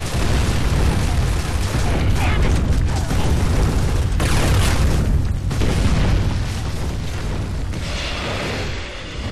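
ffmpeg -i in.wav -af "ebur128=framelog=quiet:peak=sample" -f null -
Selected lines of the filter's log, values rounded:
Integrated loudness:
  I:         -20.5 LUFS
  Threshold: -30.5 LUFS
Loudness range:
  LRA:         3.8 LU
  Threshold: -40.1 LUFS
  LRA low:   -22.7 LUFS
  LRA high:  -19.0 LUFS
Sample peak:
  Peak:       -9.2 dBFS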